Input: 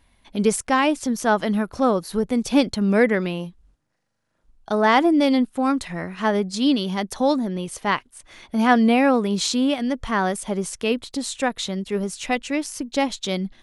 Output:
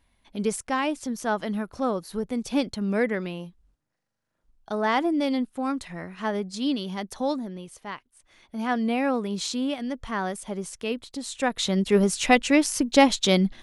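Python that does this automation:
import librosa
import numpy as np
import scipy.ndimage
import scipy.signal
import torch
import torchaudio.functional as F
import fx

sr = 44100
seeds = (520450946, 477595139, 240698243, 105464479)

y = fx.gain(x, sr, db=fx.line((7.3, -7.0), (7.94, -15.0), (9.11, -7.0), (11.23, -7.0), (11.82, 5.0)))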